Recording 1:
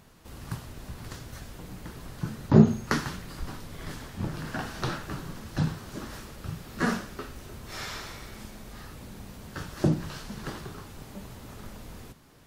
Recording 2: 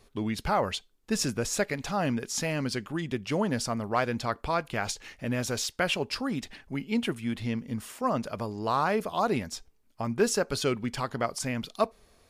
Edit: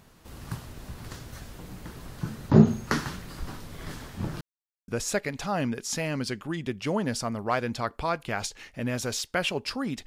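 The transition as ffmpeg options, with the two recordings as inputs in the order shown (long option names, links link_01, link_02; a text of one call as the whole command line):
ffmpeg -i cue0.wav -i cue1.wav -filter_complex "[0:a]apad=whole_dur=10.06,atrim=end=10.06,asplit=2[link_01][link_02];[link_01]atrim=end=4.41,asetpts=PTS-STARTPTS,afade=type=out:start_time=4.406:duration=0.004:curve=hsin[link_03];[link_02]atrim=start=4.41:end=4.88,asetpts=PTS-STARTPTS,volume=0[link_04];[1:a]atrim=start=1.33:end=6.51,asetpts=PTS-STARTPTS,afade=type=in:duration=0.004:curve=hsin[link_05];[link_03][link_04][link_05]concat=n=3:v=0:a=1" out.wav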